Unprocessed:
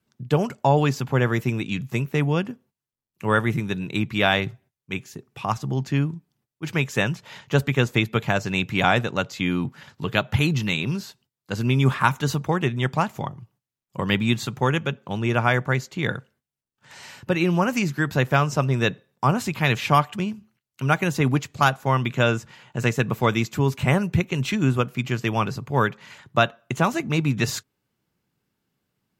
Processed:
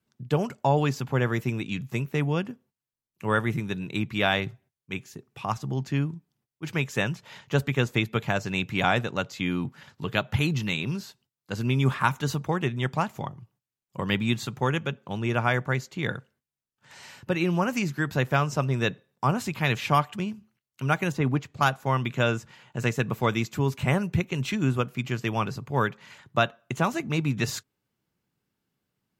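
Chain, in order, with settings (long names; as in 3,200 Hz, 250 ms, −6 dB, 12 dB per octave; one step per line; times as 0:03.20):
0:21.12–0:21.61: high-shelf EQ 3,700 Hz −11 dB
level −4 dB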